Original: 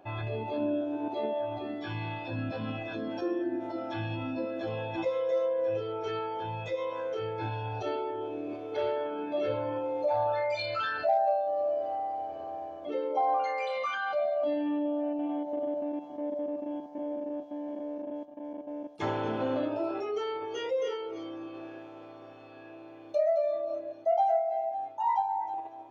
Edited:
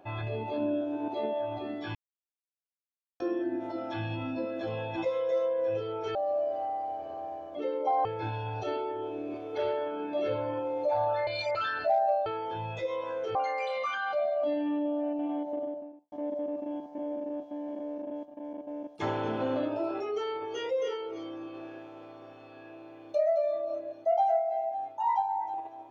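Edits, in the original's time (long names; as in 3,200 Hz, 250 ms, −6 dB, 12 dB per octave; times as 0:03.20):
0:01.95–0:03.20: silence
0:06.15–0:07.24: swap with 0:11.45–0:13.35
0:10.46–0:10.74: reverse
0:15.43–0:16.12: fade out and dull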